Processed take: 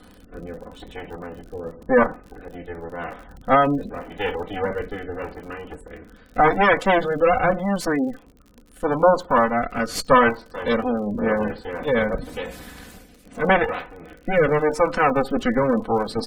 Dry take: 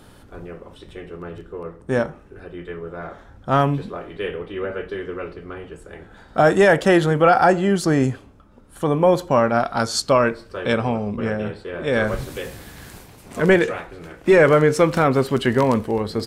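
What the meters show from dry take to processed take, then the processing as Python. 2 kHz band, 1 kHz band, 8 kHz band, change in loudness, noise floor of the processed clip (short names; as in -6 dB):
-0.5 dB, +1.0 dB, -6.0 dB, -2.0 dB, -50 dBFS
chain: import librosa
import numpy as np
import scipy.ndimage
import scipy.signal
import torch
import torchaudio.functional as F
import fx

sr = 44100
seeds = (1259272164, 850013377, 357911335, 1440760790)

y = fx.lower_of_two(x, sr, delay_ms=4.0)
y = fx.spec_gate(y, sr, threshold_db=-25, keep='strong')
y = fx.dynamic_eq(y, sr, hz=1000.0, q=1.1, threshold_db=-33.0, ratio=4.0, max_db=6)
y = fx.rider(y, sr, range_db=4, speed_s=2.0)
y = fx.rotary(y, sr, hz=0.85)
y = fx.dmg_crackle(y, sr, seeds[0], per_s=54.0, level_db=-37.0)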